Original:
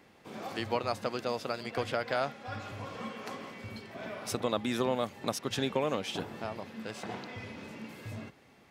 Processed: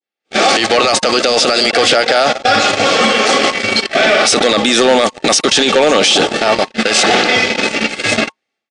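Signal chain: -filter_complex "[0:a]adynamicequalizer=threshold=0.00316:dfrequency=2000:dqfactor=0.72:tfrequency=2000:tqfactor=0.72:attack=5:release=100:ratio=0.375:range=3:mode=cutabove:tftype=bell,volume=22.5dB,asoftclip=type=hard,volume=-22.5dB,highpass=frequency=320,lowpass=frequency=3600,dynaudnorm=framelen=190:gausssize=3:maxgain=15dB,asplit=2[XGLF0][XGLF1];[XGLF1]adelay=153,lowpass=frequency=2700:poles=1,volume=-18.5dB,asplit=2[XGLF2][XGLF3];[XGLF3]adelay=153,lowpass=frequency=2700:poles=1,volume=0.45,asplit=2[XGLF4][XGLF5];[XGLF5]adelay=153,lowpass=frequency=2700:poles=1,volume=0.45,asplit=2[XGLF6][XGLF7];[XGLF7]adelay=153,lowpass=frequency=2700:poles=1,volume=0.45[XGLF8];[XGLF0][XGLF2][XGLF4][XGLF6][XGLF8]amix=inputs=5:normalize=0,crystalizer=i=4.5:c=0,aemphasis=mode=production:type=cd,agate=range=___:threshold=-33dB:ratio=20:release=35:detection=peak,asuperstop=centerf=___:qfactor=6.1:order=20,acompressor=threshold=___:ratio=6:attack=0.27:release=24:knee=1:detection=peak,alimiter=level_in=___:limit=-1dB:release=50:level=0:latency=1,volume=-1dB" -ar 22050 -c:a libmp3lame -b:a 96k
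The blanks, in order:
-53dB, 1000, -20dB, 22.5dB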